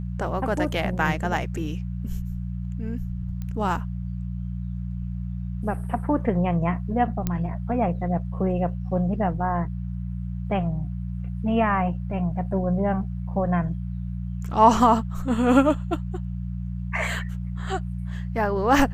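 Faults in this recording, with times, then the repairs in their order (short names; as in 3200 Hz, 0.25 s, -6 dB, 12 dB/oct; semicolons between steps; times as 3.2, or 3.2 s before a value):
hum 60 Hz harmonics 3 -30 dBFS
3.42 pop -22 dBFS
7.27 pop -11 dBFS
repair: de-click; de-hum 60 Hz, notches 3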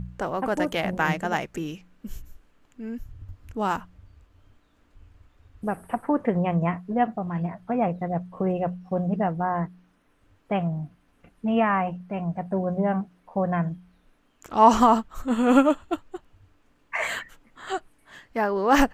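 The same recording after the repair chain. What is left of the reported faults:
3.42 pop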